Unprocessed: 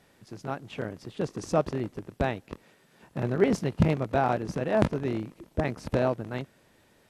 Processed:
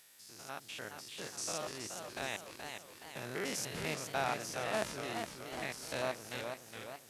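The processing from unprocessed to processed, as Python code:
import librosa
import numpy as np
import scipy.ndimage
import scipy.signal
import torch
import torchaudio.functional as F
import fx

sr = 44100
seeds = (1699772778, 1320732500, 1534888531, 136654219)

y = fx.spec_steps(x, sr, hold_ms=100)
y = librosa.effects.preemphasis(y, coef=0.97, zi=[0.0])
y = fx.echo_warbled(y, sr, ms=420, feedback_pct=53, rate_hz=2.8, cents=163, wet_db=-6.0)
y = y * 10.0 ** (10.5 / 20.0)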